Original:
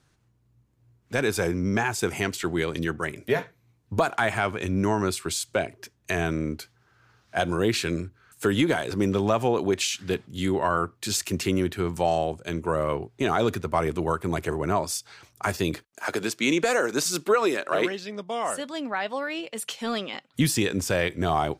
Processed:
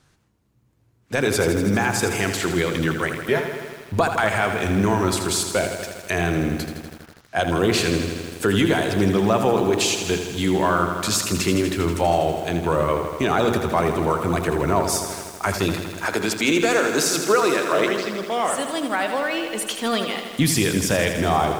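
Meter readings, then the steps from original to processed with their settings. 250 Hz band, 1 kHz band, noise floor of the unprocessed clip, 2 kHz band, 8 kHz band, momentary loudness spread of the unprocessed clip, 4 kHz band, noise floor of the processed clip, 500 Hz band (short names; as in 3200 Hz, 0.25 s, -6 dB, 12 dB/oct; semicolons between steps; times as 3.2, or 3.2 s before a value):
+5.0 dB, +5.0 dB, -66 dBFS, +5.0 dB, +6.5 dB, 8 LU, +6.0 dB, -59 dBFS, +5.0 dB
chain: notches 60/120/180/240/300/360/420 Hz; in parallel at -0.5 dB: limiter -18.5 dBFS, peak gain reduction 8.5 dB; on the sum: wow and flutter 48 cents; lo-fi delay 81 ms, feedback 80%, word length 7-bit, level -8 dB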